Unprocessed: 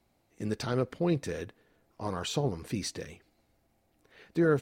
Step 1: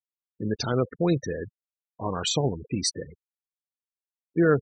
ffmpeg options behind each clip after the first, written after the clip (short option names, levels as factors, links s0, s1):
-af "afftfilt=real='re*gte(hypot(re,im),0.02)':imag='im*gte(hypot(re,im),0.02)':win_size=1024:overlap=0.75,highshelf=f=3500:g=10,volume=1.68"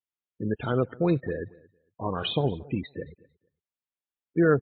-af "aecho=1:1:228|456:0.0708|0.0135" -ar 8000 -c:a libmp3lame -b:a 24k